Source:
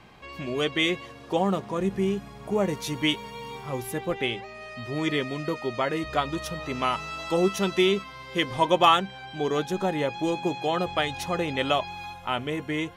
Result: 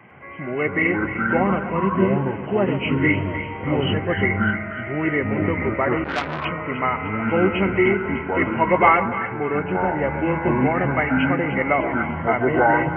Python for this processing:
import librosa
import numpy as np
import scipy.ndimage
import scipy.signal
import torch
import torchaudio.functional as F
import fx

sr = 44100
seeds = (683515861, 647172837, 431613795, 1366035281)

p1 = fx.freq_compress(x, sr, knee_hz=1900.0, ratio=4.0)
p2 = scipy.signal.sosfilt(scipy.signal.butter(4, 100.0, 'highpass', fs=sr, output='sos'), p1)
p3 = fx.rider(p2, sr, range_db=5, speed_s=2.0)
p4 = p2 + F.gain(torch.from_numpy(p3), -3.0).numpy()
p5 = fx.air_absorb(p4, sr, metres=400.0, at=(9.09, 10.02))
p6 = fx.echo_pitch(p5, sr, ms=104, semitones=-6, count=2, db_per_echo=-3.0)
p7 = fx.echo_split(p6, sr, split_hz=1200.0, low_ms=134, high_ms=300, feedback_pct=52, wet_db=-10.5)
p8 = fx.transformer_sat(p7, sr, knee_hz=2500.0, at=(6.04, 6.45))
y = F.gain(torch.from_numpy(p8), -1.5).numpy()